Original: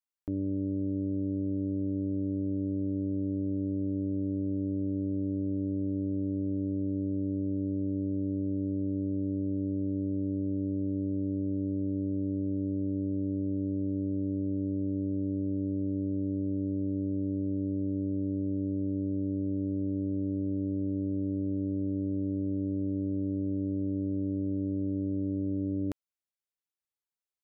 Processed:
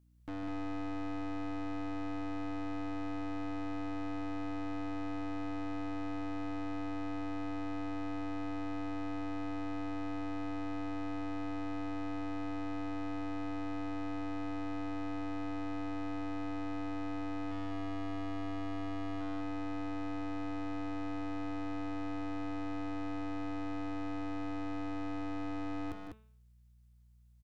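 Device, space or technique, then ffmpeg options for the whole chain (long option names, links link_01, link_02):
valve amplifier with mains hum: -filter_complex "[0:a]highpass=frequency=81:width=0.5412,highpass=frequency=81:width=1.3066,bandreject=frequency=217.7:width_type=h:width=4,bandreject=frequency=435.4:width_type=h:width=4,bandreject=frequency=653.1:width_type=h:width=4,bandreject=frequency=870.8:width_type=h:width=4,bandreject=frequency=1088.5:width_type=h:width=4,bandreject=frequency=1306.2:width_type=h:width=4,bandreject=frequency=1523.9:width_type=h:width=4,bandreject=frequency=1741.6:width_type=h:width=4,bandreject=frequency=1959.3:width_type=h:width=4,bandreject=frequency=2177:width_type=h:width=4,bandreject=frequency=2394.7:width_type=h:width=4,bandreject=frequency=2612.4:width_type=h:width=4,bandreject=frequency=2830.1:width_type=h:width=4,bandreject=frequency=3047.8:width_type=h:width=4,bandreject=frequency=3265.5:width_type=h:width=4,bandreject=frequency=3483.2:width_type=h:width=4,bandreject=frequency=3700.9:width_type=h:width=4,asettb=1/sr,asplit=3[link_01][link_02][link_03];[link_01]atrim=end=17.514[link_04];[link_02]atrim=start=17.51:end=19.21,asetpts=PTS-STARTPTS,afade=type=in:duration=0.004:curve=qsin,afade=type=out:start_time=1.696:duration=0.004:curve=qsin,lowshelf=frequency=120:gain=4[link_05];[link_03]atrim=start=19.206[link_06];[link_04][link_05]acrossfade=duration=0.004:curve1=hsin:curve2=qsin[link_07];[link_07][link_06]acrossfade=duration=0.004:curve1=qsin:curve2=hsin,aeval=exprs='(tanh(224*val(0)+0.4)-tanh(0.4))/224':channel_layout=same,aeval=exprs='val(0)+0.000251*(sin(2*PI*60*n/s)+sin(2*PI*2*60*n/s)/2+sin(2*PI*3*60*n/s)/3+sin(2*PI*4*60*n/s)/4+sin(2*PI*5*60*n/s)/5)':channel_layout=same,aecho=1:1:151.6|198.3:0.316|0.562,volume=7.5dB"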